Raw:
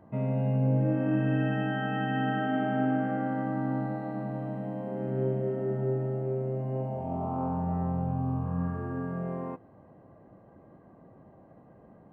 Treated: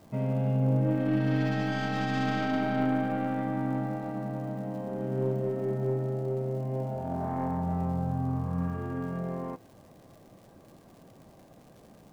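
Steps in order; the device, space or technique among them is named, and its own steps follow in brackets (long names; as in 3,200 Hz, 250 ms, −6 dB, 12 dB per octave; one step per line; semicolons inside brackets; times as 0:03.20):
record under a worn stylus (stylus tracing distortion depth 0.15 ms; surface crackle 130 per second −47 dBFS; pink noise bed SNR 37 dB)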